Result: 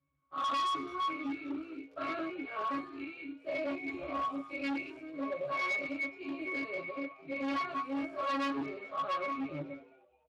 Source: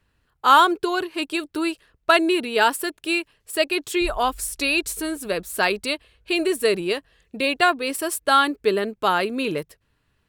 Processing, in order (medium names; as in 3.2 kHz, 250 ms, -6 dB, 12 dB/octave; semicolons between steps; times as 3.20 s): every event in the spectrogram widened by 240 ms; hum notches 60/120/180/240 Hz; pitch-class resonator C#, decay 0.56 s; 0.76–3.11 s: crackle 54 per s -54 dBFS; reverb removal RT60 0.82 s; doubling 19 ms -2 dB; dynamic bell 5.4 kHz, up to +3 dB, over -54 dBFS, Q 1.2; overload inside the chain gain 34.5 dB; low-pass 9.6 kHz 24 dB/octave; bass shelf 230 Hz -8 dB; frequency-shifting echo 212 ms, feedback 41%, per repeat +110 Hz, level -19.5 dB; trim +4.5 dB; Speex 24 kbps 32 kHz